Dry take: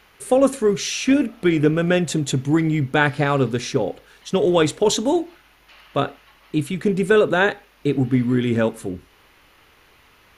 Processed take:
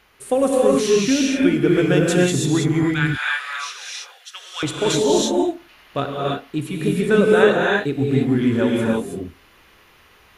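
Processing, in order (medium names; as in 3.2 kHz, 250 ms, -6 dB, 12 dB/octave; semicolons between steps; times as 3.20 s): 1.69–2.24 s: treble shelf 5.9 kHz +6.5 dB; 2.83–4.63 s: high-pass 1.3 kHz 24 dB/octave; gated-style reverb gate 350 ms rising, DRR -3 dB; trim -3 dB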